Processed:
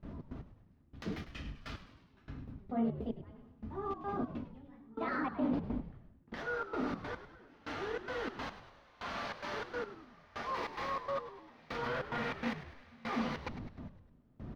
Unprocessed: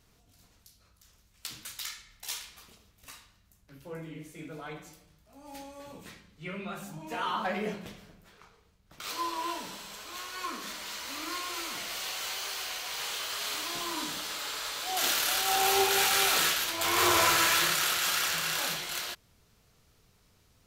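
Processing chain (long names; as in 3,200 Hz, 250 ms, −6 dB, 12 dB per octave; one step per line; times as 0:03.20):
noise gate with hold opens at −55 dBFS
tilt shelving filter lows +8.5 dB
brickwall limiter −23.5 dBFS, peak gain reduction 10.5 dB
reversed playback
downward compressor 4 to 1, threshold −48 dBFS, peak gain reduction 16.5 dB
reversed playback
gate pattern "xx.x.....xxx." 102 BPM −24 dB
change of speed 1.42×
high-frequency loss of the air 280 metres
hollow resonant body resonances 240/1,200 Hz, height 8 dB
echo with shifted repeats 102 ms, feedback 54%, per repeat −79 Hz, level −12 dB
level +12 dB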